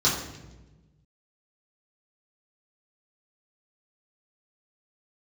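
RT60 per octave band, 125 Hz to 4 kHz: 1.9, 1.6, 1.3, 0.95, 0.90, 0.80 s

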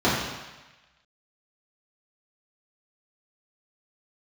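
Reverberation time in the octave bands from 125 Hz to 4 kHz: 1.1, 1.0, 1.1, 1.2, 1.3, 1.2 s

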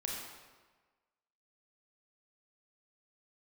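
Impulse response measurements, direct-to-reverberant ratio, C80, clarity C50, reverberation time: -2.0 dB, 2.5 dB, 0.5 dB, 1.4 s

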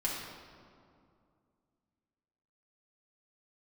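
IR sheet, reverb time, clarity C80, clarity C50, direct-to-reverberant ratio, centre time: 2.4 s, 2.5 dB, 0.5 dB, -6.0 dB, 87 ms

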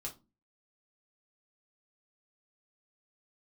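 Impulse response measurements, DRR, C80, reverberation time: -1.5 dB, 22.5 dB, 0.30 s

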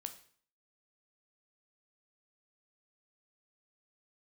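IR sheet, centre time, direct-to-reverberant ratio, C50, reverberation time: 8 ms, 7.0 dB, 12.5 dB, 0.50 s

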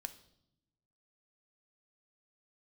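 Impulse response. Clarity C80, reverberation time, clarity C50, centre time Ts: 18.0 dB, 0.75 s, 14.5 dB, 5 ms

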